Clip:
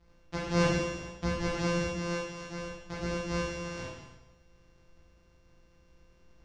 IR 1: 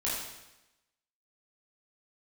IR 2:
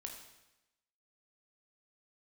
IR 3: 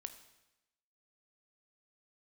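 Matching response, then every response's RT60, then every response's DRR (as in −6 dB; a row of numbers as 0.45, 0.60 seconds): 1; 0.95, 0.95, 0.95 seconds; −8.0, 2.0, 9.0 decibels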